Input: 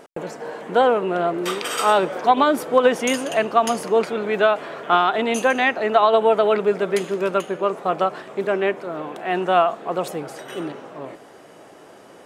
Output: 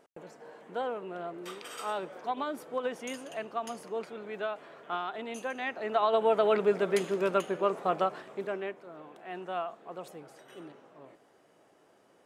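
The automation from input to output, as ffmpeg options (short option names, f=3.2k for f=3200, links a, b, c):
-af "volume=-6.5dB,afade=t=in:st=5.57:d=1.06:silence=0.281838,afade=t=out:st=7.83:d=0.92:silence=0.266073"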